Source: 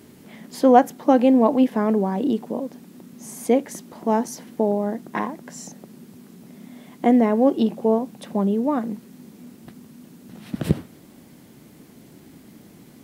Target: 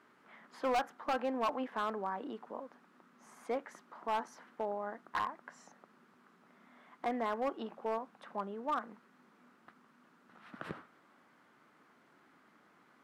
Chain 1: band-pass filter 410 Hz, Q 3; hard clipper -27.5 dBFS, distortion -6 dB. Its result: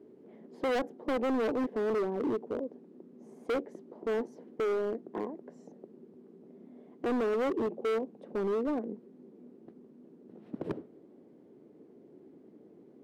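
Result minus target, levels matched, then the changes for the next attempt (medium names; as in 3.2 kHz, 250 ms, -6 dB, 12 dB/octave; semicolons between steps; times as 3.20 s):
1 kHz band -8.5 dB
change: band-pass filter 1.3 kHz, Q 3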